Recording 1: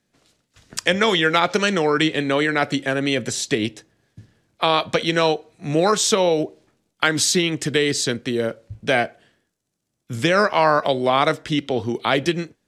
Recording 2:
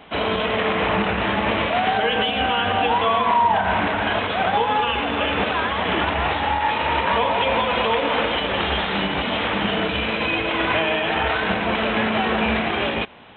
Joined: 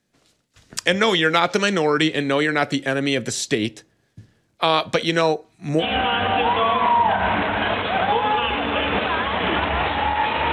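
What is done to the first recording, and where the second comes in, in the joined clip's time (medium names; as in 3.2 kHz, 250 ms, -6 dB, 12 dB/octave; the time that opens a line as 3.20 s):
recording 1
5.21–5.84 s: LFO notch square 2.1 Hz 510–3100 Hz
5.81 s: go over to recording 2 from 2.26 s, crossfade 0.06 s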